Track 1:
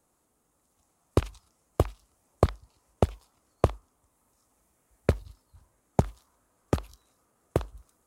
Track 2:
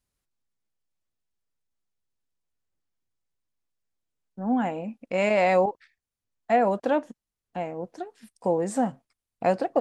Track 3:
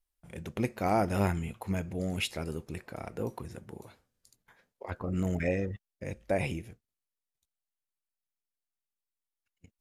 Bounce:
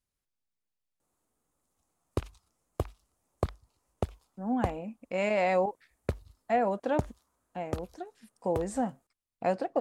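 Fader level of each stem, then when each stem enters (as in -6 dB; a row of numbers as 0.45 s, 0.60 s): -8.0 dB, -5.5 dB, mute; 1.00 s, 0.00 s, mute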